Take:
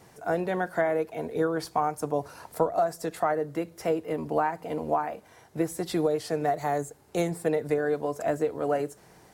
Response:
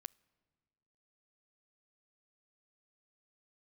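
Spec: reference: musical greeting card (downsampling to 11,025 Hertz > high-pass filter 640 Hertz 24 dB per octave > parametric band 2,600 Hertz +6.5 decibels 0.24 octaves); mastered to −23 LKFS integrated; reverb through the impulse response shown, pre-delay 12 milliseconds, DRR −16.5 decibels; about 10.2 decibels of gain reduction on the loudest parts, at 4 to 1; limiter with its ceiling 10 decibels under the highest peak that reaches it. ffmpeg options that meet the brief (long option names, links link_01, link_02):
-filter_complex "[0:a]acompressor=threshold=-33dB:ratio=4,alimiter=level_in=5.5dB:limit=-24dB:level=0:latency=1,volume=-5.5dB,asplit=2[link_01][link_02];[1:a]atrim=start_sample=2205,adelay=12[link_03];[link_02][link_03]afir=irnorm=-1:irlink=0,volume=22.5dB[link_04];[link_01][link_04]amix=inputs=2:normalize=0,aresample=11025,aresample=44100,highpass=frequency=640:width=0.5412,highpass=frequency=640:width=1.3066,equalizer=frequency=2600:width_type=o:width=0.24:gain=6.5,volume=5.5dB"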